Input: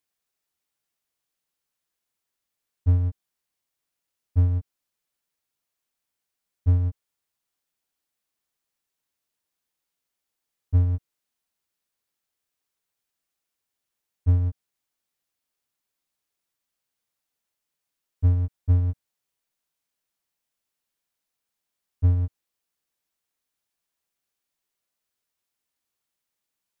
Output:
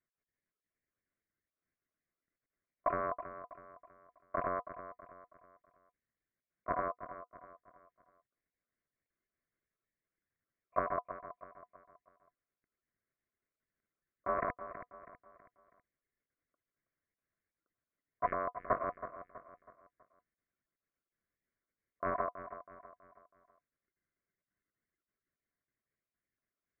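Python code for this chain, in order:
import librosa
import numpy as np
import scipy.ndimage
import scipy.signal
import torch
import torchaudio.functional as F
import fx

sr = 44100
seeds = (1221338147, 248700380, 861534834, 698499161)

p1 = fx.spec_dropout(x, sr, seeds[0], share_pct=29)
p2 = fx.dynamic_eq(p1, sr, hz=850.0, q=1.2, threshold_db=-54.0, ratio=4.0, max_db=-6)
p3 = fx.lpc_vocoder(p2, sr, seeds[1], excitation='pitch_kept', order=10)
p4 = fx.leveller(p3, sr, passes=3)
p5 = fx.over_compress(p4, sr, threshold_db=-25.0, ratio=-1.0)
p6 = p4 + (p5 * 10.0 ** (1.0 / 20.0))
p7 = scipy.signal.sosfilt(scipy.signal.cheby1(4, 1.0, [140.0, 1300.0], 'bandpass', fs=sr, output='sos'), p6)
p8 = fx.low_shelf(p7, sr, hz=180.0, db=-10.5)
p9 = fx.notch(p8, sr, hz=380.0, q=12.0)
p10 = p9 * np.sin(2.0 * np.pi * 860.0 * np.arange(len(p9)) / sr)
y = p10 + fx.echo_feedback(p10, sr, ms=324, feedback_pct=41, wet_db=-12.0, dry=0)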